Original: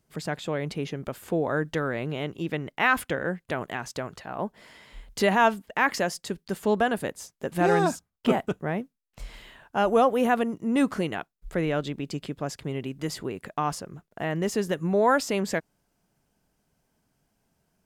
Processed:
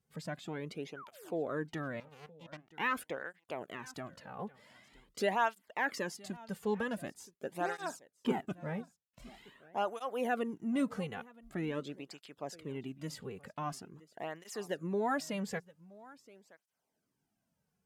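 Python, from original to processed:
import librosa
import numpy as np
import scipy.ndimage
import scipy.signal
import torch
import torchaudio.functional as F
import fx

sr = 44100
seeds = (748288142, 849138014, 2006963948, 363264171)

p1 = fx.spec_paint(x, sr, seeds[0], shape='fall', start_s=0.96, length_s=0.36, low_hz=270.0, high_hz=1600.0, level_db=-39.0)
p2 = fx.power_curve(p1, sr, exponent=3.0, at=(2.0, 2.74))
p3 = p2 + fx.echo_single(p2, sr, ms=972, db=-21.5, dry=0)
p4 = fx.flanger_cancel(p3, sr, hz=0.45, depth_ms=3.3)
y = F.gain(torch.from_numpy(p4), -8.0).numpy()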